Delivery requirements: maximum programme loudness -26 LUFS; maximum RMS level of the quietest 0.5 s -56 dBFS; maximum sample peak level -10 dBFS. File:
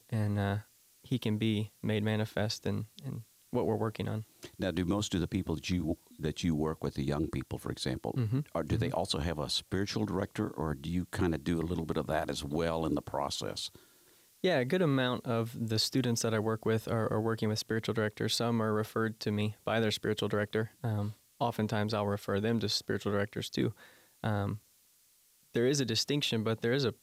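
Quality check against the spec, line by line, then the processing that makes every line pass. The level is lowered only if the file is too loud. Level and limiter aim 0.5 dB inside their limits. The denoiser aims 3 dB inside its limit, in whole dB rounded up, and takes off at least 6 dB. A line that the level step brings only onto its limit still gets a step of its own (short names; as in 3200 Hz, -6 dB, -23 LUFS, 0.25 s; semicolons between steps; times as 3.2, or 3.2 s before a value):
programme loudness -33.0 LUFS: OK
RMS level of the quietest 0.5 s -67 dBFS: OK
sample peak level -19.0 dBFS: OK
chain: none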